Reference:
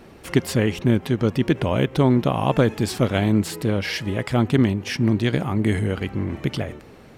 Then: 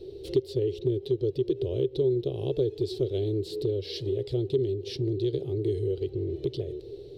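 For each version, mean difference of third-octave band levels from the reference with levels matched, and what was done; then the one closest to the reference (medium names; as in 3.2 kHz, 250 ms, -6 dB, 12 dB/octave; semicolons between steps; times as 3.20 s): 10.5 dB: FFT filter 130 Hz 0 dB, 220 Hz -24 dB, 390 Hz +14 dB, 610 Hz -10 dB, 1.1 kHz -30 dB, 1.6 kHz -28 dB, 2.3 kHz -20 dB, 3.9 kHz +4 dB, 6.6 kHz -14 dB; compression 2:1, threshold -32 dBFS, peak gain reduction 14.5 dB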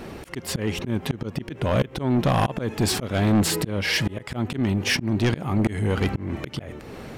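5.5 dB: slow attack 392 ms; saturation -23.5 dBFS, distortion -8 dB; trim +8.5 dB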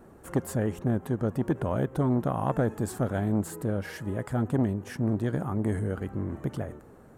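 3.5 dB: high-order bell 3.4 kHz -14 dB; transformer saturation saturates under 400 Hz; trim -6 dB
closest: third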